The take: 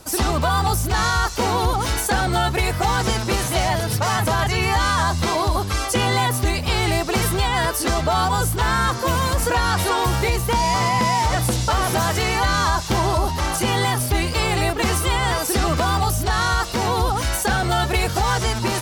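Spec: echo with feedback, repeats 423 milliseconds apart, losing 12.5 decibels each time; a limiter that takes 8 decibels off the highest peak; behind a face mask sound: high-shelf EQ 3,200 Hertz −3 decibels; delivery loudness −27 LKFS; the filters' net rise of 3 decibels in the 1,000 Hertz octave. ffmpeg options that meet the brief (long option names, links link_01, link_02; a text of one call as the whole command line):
ffmpeg -i in.wav -af "equalizer=frequency=1000:width_type=o:gain=4,alimiter=limit=-15dB:level=0:latency=1,highshelf=frequency=3200:gain=-3,aecho=1:1:423|846|1269:0.237|0.0569|0.0137,volume=-3.5dB" out.wav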